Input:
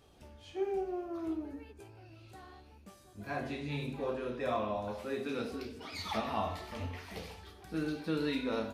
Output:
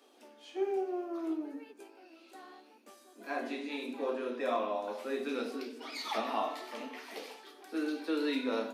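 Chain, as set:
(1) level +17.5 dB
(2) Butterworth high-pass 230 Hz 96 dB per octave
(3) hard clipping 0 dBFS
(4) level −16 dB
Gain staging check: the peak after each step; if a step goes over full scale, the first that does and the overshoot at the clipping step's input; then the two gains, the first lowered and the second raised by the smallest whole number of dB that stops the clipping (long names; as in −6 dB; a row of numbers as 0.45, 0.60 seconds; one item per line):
−3.5, −5.0, −5.0, −21.0 dBFS
no step passes full scale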